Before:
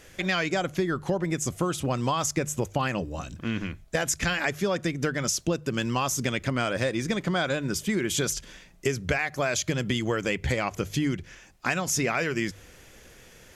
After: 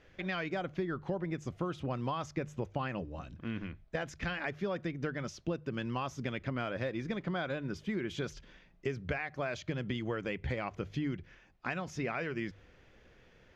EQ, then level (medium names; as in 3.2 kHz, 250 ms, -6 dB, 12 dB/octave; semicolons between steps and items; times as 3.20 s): distance through air 260 m; treble shelf 8.4 kHz +4.5 dB; -8.0 dB